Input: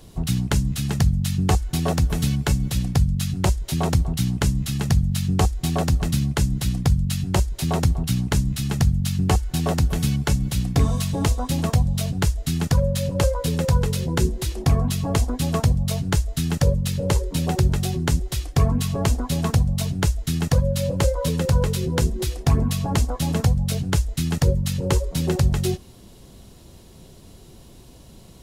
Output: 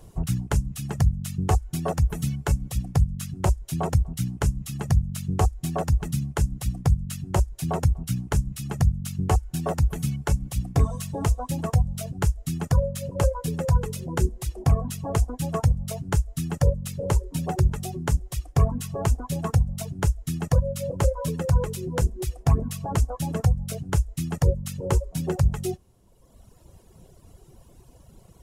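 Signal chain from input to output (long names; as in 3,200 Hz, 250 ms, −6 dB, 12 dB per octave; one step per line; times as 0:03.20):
octave-band graphic EQ 250/2,000/4,000 Hz −6/−4/−11 dB
reverb reduction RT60 1.5 s
high-shelf EQ 11,000 Hz −6.5 dB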